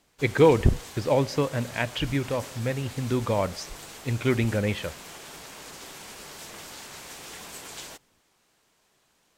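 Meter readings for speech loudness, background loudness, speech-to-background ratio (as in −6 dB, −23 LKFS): −26.0 LKFS, −41.5 LKFS, 15.5 dB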